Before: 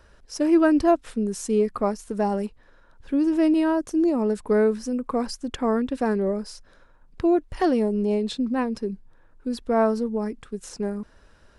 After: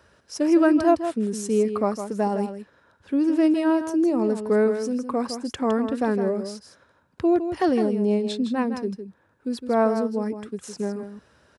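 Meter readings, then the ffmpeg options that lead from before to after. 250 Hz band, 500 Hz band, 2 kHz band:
+0.5 dB, +0.5 dB, +0.5 dB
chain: -filter_complex "[0:a]highpass=frequency=78:width=0.5412,highpass=frequency=78:width=1.3066,asplit=2[link_01][link_02];[link_02]aecho=0:1:160:0.355[link_03];[link_01][link_03]amix=inputs=2:normalize=0"

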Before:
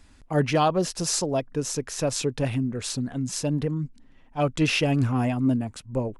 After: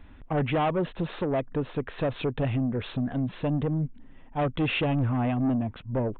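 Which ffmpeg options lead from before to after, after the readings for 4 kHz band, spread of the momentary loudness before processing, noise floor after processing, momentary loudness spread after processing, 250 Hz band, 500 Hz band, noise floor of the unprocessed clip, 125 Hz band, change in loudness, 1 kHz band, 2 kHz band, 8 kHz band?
−7.5 dB, 7 LU, −48 dBFS, 6 LU, −2.0 dB, −2.5 dB, −53 dBFS, −1.5 dB, −3.0 dB, −2.5 dB, −3.0 dB, below −40 dB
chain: -filter_complex "[0:a]highshelf=frequency=2400:gain=-8,asplit=2[link_01][link_02];[link_02]acompressor=threshold=-29dB:ratio=6,volume=1dB[link_03];[link_01][link_03]amix=inputs=2:normalize=0,asoftclip=type=tanh:threshold=-20dB,aresample=8000,aresample=44100,volume=-1dB"

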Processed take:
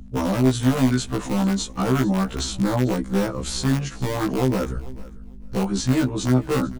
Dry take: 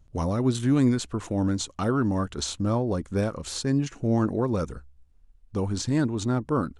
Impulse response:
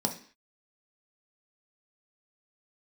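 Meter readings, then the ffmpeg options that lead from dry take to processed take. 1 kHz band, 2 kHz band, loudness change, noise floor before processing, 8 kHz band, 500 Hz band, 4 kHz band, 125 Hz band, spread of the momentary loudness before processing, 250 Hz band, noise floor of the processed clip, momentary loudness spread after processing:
+4.5 dB, +7.0 dB, +4.0 dB, −57 dBFS, +4.5 dB, +3.5 dB, +5.5 dB, +3.5 dB, 7 LU, +4.0 dB, −38 dBFS, 7 LU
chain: -filter_complex "[0:a]bass=frequency=250:gain=8,treble=frequency=4000:gain=-1,acrossover=split=230|470[link_01][link_02][link_03];[link_01]acompressor=threshold=-33dB:ratio=4[link_04];[link_02]acompressor=threshold=-27dB:ratio=4[link_05];[link_03]acompressor=threshold=-31dB:ratio=4[link_06];[link_04][link_05][link_06]amix=inputs=3:normalize=0,asplit=2[link_07][link_08];[link_08]aeval=exprs='(mod(7.94*val(0)+1,2)-1)/7.94':channel_layout=same,volume=-6.5dB[link_09];[link_07][link_09]amix=inputs=2:normalize=0,aeval=exprs='val(0)+0.01*(sin(2*PI*50*n/s)+sin(2*PI*2*50*n/s)/2+sin(2*PI*3*50*n/s)/3+sin(2*PI*4*50*n/s)/4+sin(2*PI*5*50*n/s)/5)':channel_layout=same,aecho=1:1:443|886:0.1|0.017,afftfilt=real='re*1.73*eq(mod(b,3),0)':imag='im*1.73*eq(mod(b,3),0)':win_size=2048:overlap=0.75,volume=5dB"

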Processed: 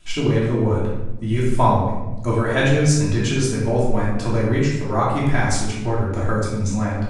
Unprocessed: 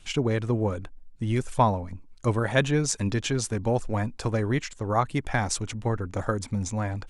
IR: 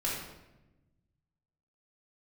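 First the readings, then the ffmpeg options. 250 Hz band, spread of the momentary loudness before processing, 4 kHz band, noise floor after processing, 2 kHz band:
+7.5 dB, 6 LU, +5.0 dB, −26 dBFS, +6.0 dB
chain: -filter_complex "[1:a]atrim=start_sample=2205[link_01];[0:a][link_01]afir=irnorm=-1:irlink=0"

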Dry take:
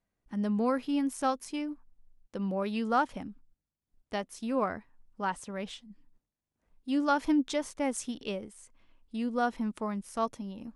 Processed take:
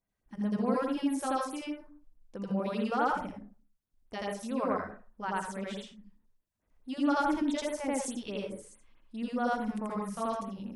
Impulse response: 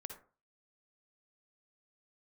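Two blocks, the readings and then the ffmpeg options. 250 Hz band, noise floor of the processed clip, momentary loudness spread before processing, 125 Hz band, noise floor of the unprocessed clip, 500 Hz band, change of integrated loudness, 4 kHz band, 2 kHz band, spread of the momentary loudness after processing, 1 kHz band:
−1.0 dB, −84 dBFS, 14 LU, 0.0 dB, below −85 dBFS, −0.5 dB, −1.0 dB, −1.5 dB, −0.5 dB, 14 LU, −0.5 dB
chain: -filter_complex "[0:a]asplit=2[link_01][link_02];[1:a]atrim=start_sample=2205,adelay=83[link_03];[link_02][link_03]afir=irnorm=-1:irlink=0,volume=7dB[link_04];[link_01][link_04]amix=inputs=2:normalize=0,afftfilt=real='re*(1-between(b*sr/1024,220*pow(6600/220,0.5+0.5*sin(2*PI*4.7*pts/sr))/1.41,220*pow(6600/220,0.5+0.5*sin(2*PI*4.7*pts/sr))*1.41))':imag='im*(1-between(b*sr/1024,220*pow(6600/220,0.5+0.5*sin(2*PI*4.7*pts/sr))/1.41,220*pow(6600/220,0.5+0.5*sin(2*PI*4.7*pts/sr))*1.41))':win_size=1024:overlap=0.75,volume=-4.5dB"

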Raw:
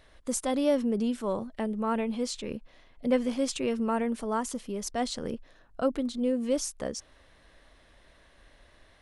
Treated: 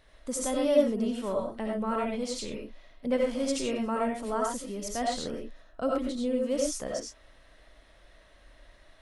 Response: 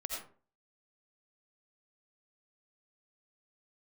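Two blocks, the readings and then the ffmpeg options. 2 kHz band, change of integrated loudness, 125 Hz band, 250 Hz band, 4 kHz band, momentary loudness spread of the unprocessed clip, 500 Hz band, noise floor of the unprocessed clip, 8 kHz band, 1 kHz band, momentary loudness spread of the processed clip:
+0.5 dB, 0.0 dB, −2.0 dB, −1.5 dB, +0.5 dB, 10 LU, +1.5 dB, −60 dBFS, 0.0 dB, +1.0 dB, 11 LU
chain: -filter_complex "[1:a]atrim=start_sample=2205,atrim=end_sample=6174[link_01];[0:a][link_01]afir=irnorm=-1:irlink=0"

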